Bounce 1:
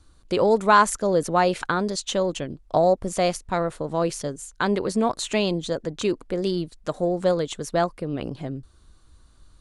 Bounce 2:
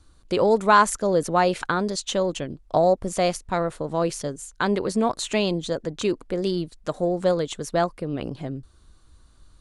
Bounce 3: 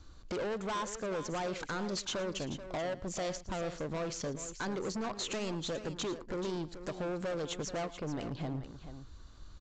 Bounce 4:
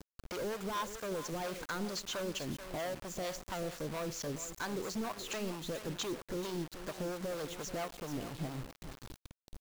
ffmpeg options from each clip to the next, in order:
-af anull
-af "acompressor=threshold=0.02:ratio=2.5,aresample=16000,asoftclip=type=hard:threshold=0.0178,aresample=44100,aecho=1:1:112|434:0.133|0.266,volume=1.19"
-filter_complex "[0:a]acrossover=split=550[s0][s1];[s0]aeval=exprs='val(0)*(1-0.7/2+0.7/2*cos(2*PI*4.4*n/s))':c=same[s2];[s1]aeval=exprs='val(0)*(1-0.7/2-0.7/2*cos(2*PI*4.4*n/s))':c=same[s3];[s2][s3]amix=inputs=2:normalize=0,acrusher=bits=7:mix=0:aa=0.000001,volume=1.12"

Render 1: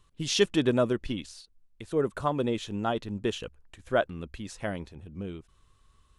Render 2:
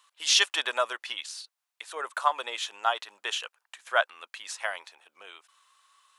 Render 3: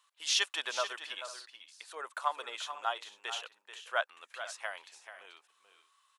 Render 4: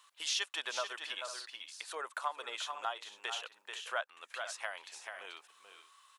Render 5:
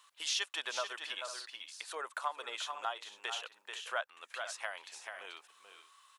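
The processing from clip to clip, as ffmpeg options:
-af "highpass=f=830:w=0.5412,highpass=f=830:w=1.3066,volume=2.37"
-af "aecho=1:1:435|497:0.282|0.119,volume=0.422"
-af "acompressor=threshold=0.00316:ratio=2,volume=2.37"
-af "bandreject=f=50:t=h:w=6,bandreject=f=100:t=h:w=6,bandreject=f=150:t=h:w=6"

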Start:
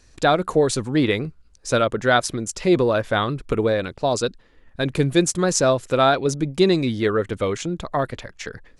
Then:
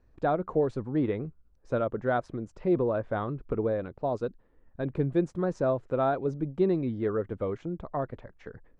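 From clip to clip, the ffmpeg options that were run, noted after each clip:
-af "lowpass=1000,aemphasis=mode=production:type=cd,volume=0.422"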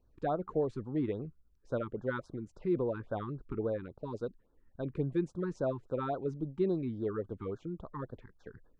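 -af "afftfilt=real='re*(1-between(b*sr/1024,560*pow(2500/560,0.5+0.5*sin(2*PI*3.6*pts/sr))/1.41,560*pow(2500/560,0.5+0.5*sin(2*PI*3.6*pts/sr))*1.41))':imag='im*(1-between(b*sr/1024,560*pow(2500/560,0.5+0.5*sin(2*PI*3.6*pts/sr))/1.41,560*pow(2500/560,0.5+0.5*sin(2*PI*3.6*pts/sr))*1.41))':win_size=1024:overlap=0.75,volume=0.531"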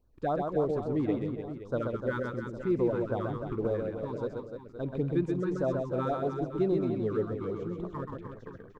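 -filter_complex "[0:a]asplit=2[s0][s1];[s1]aeval=exprs='sgn(val(0))*max(abs(val(0))-0.00282,0)':c=same,volume=0.335[s2];[s0][s2]amix=inputs=2:normalize=0,aecho=1:1:130|299|518.7|804.3|1176:0.631|0.398|0.251|0.158|0.1"

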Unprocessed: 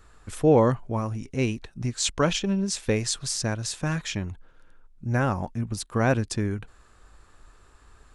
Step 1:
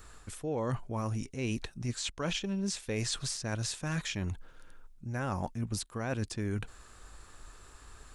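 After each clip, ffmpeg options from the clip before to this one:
-filter_complex "[0:a]acrossover=split=3300[s0][s1];[s1]acompressor=threshold=0.0112:ratio=4:attack=1:release=60[s2];[s0][s2]amix=inputs=2:normalize=0,highshelf=f=4000:g=8.5,areverse,acompressor=threshold=0.0282:ratio=16,areverse,volume=1.12"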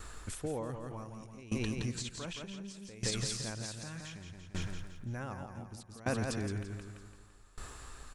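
-filter_complex "[0:a]asplit=2[s0][s1];[s1]aecho=0:1:169|338|507|676|845|1014|1183:0.631|0.334|0.177|0.0939|0.0498|0.0264|0.014[s2];[s0][s2]amix=inputs=2:normalize=0,alimiter=level_in=1.58:limit=0.0631:level=0:latency=1:release=191,volume=0.631,aeval=exprs='val(0)*pow(10,-20*if(lt(mod(0.66*n/s,1),2*abs(0.66)/1000),1-mod(0.66*n/s,1)/(2*abs(0.66)/1000),(mod(0.66*n/s,1)-2*abs(0.66)/1000)/(1-2*abs(0.66)/1000))/20)':c=same,volume=2"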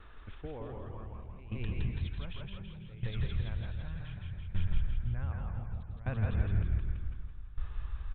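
-filter_complex "[0:a]aresample=8000,aresample=44100,asplit=7[s0][s1][s2][s3][s4][s5][s6];[s1]adelay=164,afreqshift=-38,volume=0.708[s7];[s2]adelay=328,afreqshift=-76,volume=0.331[s8];[s3]adelay=492,afreqshift=-114,volume=0.157[s9];[s4]adelay=656,afreqshift=-152,volume=0.0733[s10];[s5]adelay=820,afreqshift=-190,volume=0.0347[s11];[s6]adelay=984,afreqshift=-228,volume=0.0162[s12];[s0][s7][s8][s9][s10][s11][s12]amix=inputs=7:normalize=0,asubboost=boost=9.5:cutoff=100,volume=0.501"

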